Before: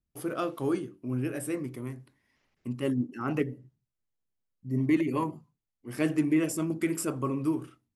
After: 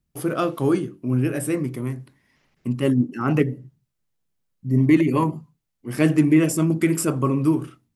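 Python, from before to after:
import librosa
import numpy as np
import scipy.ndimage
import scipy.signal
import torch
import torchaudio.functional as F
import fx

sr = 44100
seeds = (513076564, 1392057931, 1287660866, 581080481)

y = fx.peak_eq(x, sr, hz=160.0, db=6.0, octaves=0.65)
y = y * librosa.db_to_amplitude(8.0)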